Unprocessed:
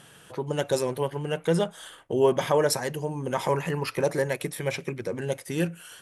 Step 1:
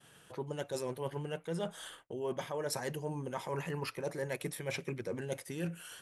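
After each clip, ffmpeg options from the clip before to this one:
ffmpeg -i in.wav -af "agate=range=-33dB:threshold=-47dB:ratio=3:detection=peak,areverse,acompressor=threshold=-30dB:ratio=10,areverse,volume=-3.5dB" out.wav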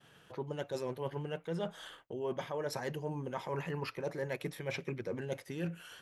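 ffmpeg -i in.wav -af "equalizer=frequency=9300:width=1.2:gain=-13" out.wav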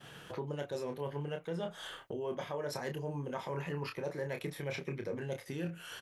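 ffmpeg -i in.wav -filter_complex "[0:a]asplit=2[link_01][link_02];[link_02]adelay=28,volume=-6.5dB[link_03];[link_01][link_03]amix=inputs=2:normalize=0,acompressor=threshold=-53dB:ratio=2,volume=9dB" out.wav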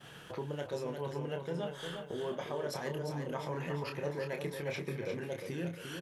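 ffmpeg -i in.wav -af "aecho=1:1:352|704|1056|1408|1760:0.473|0.208|0.0916|0.0403|0.0177" out.wav

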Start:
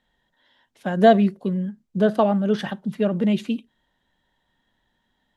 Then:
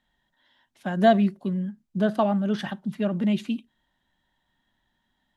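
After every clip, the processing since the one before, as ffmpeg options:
ffmpeg -i in.wav -af "equalizer=frequency=470:width=4.8:gain=-12,volume=-2.5dB" out.wav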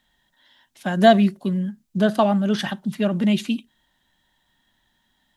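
ffmpeg -i in.wav -af "highshelf=frequency=3100:gain=9,volume=4dB" out.wav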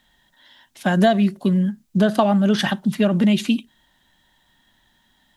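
ffmpeg -i in.wav -af "acompressor=threshold=-19dB:ratio=6,volume=6dB" out.wav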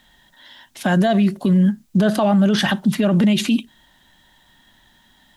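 ffmpeg -i in.wav -af "alimiter=limit=-16dB:level=0:latency=1:release=39,volume=6.5dB" out.wav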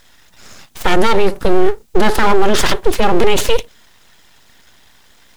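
ffmpeg -i in.wav -af "aeval=exprs='abs(val(0))':channel_layout=same,volume=8dB" out.wav

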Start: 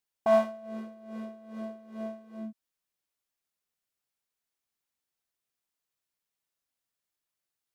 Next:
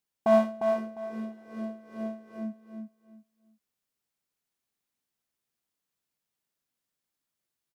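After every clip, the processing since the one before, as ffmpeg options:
ffmpeg -i in.wav -af "equalizer=frequency=200:width=0.76:gain=6.5,aecho=1:1:352|704|1056:0.473|0.109|0.025" out.wav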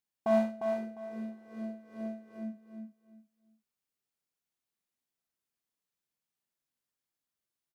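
ffmpeg -i in.wav -filter_complex "[0:a]asplit=2[link_01][link_02];[link_02]adelay=45,volume=-6dB[link_03];[link_01][link_03]amix=inputs=2:normalize=0,volume=-6dB" out.wav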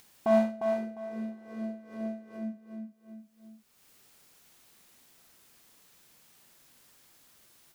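ffmpeg -i in.wav -af "acompressor=mode=upward:threshold=-42dB:ratio=2.5,volume=3dB" out.wav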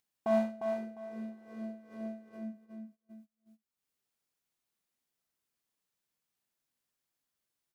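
ffmpeg -i in.wav -af "agate=range=-21dB:threshold=-50dB:ratio=16:detection=peak,volume=-5dB" out.wav

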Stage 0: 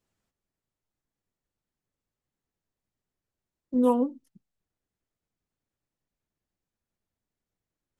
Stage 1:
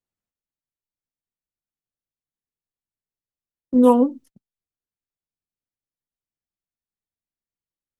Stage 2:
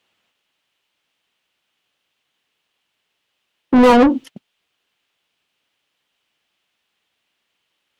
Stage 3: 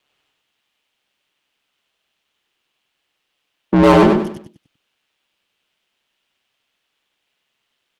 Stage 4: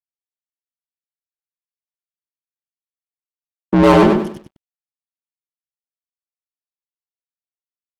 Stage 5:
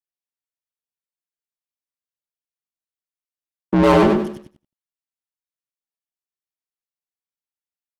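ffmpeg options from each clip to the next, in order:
ffmpeg -i in.wav -af "agate=range=-21dB:threshold=-52dB:ratio=16:detection=peak,volume=8.5dB" out.wav
ffmpeg -i in.wav -filter_complex "[0:a]equalizer=frequency=3000:width_type=o:width=0.82:gain=12.5,asplit=2[link_01][link_02];[link_02]highpass=frequency=720:poles=1,volume=33dB,asoftclip=type=tanh:threshold=-3.5dB[link_03];[link_01][link_03]amix=inputs=2:normalize=0,lowpass=frequency=1800:poles=1,volume=-6dB" out.wav
ffmpeg -i in.wav -filter_complex "[0:a]aeval=exprs='val(0)*sin(2*PI*70*n/s)':channel_layout=same,asplit=2[link_01][link_02];[link_02]aecho=0:1:97|194|291|388:0.668|0.221|0.0728|0.024[link_03];[link_01][link_03]amix=inputs=2:normalize=0,volume=1.5dB" out.wav
ffmpeg -i in.wav -af "aeval=exprs='sgn(val(0))*max(abs(val(0))-0.00473,0)':channel_layout=same" out.wav
ffmpeg -i in.wav -af "aecho=1:1:83|166:0.168|0.0269,volume=-3dB" out.wav

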